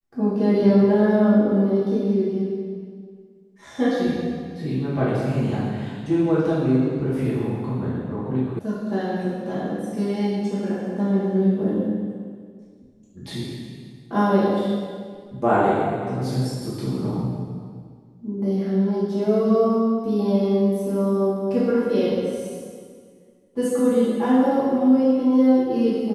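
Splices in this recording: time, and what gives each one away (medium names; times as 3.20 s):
8.59 s: sound stops dead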